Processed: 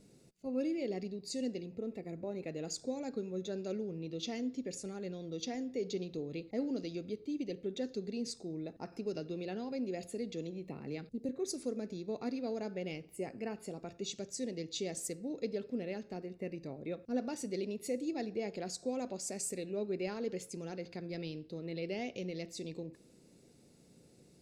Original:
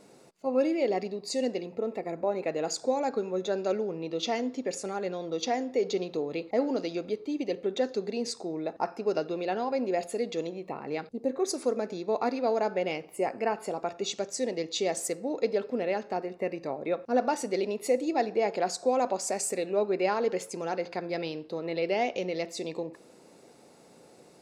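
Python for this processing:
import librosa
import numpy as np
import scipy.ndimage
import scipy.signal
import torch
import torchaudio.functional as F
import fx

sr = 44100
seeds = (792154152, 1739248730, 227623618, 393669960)

y = fx.tone_stack(x, sr, knobs='10-0-1')
y = fx.band_squash(y, sr, depth_pct=40, at=(8.92, 11.29))
y = F.gain(torch.from_numpy(y), 14.0).numpy()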